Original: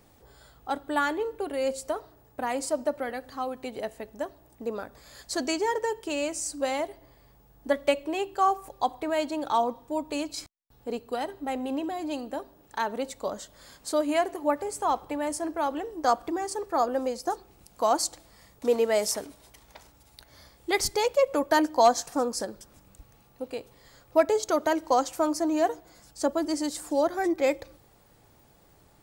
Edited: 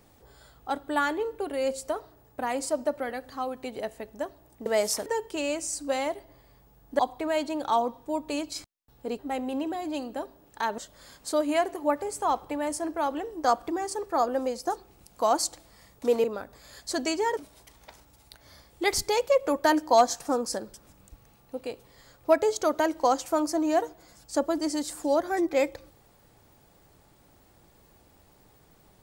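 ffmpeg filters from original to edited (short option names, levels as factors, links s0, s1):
-filter_complex "[0:a]asplit=8[s0][s1][s2][s3][s4][s5][s6][s7];[s0]atrim=end=4.662[s8];[s1]atrim=start=18.838:end=19.242[s9];[s2]atrim=start=5.788:end=7.722[s10];[s3]atrim=start=8.808:end=11.012[s11];[s4]atrim=start=11.358:end=12.952[s12];[s5]atrim=start=13.378:end=18.842[s13];[s6]atrim=start=4.658:end=5.792[s14];[s7]atrim=start=19.238[s15];[s8][s9]acrossfade=d=0.004:c1=hsin:c2=hsin[s16];[s16][s10]acrossfade=d=0.004:c1=hsin:c2=hsin[s17];[s17][s11]acrossfade=d=0.004:c1=hsin:c2=hsin[s18];[s18][s12]acrossfade=d=0.004:c1=hsin:c2=hsin[s19];[s19][s13]acrossfade=d=0.004:c1=hsin:c2=hsin[s20];[s20][s14]acrossfade=d=0.004:c1=hsin:c2=hsin[s21];[s21][s15]acrossfade=d=0.004:c1=hsin:c2=hsin"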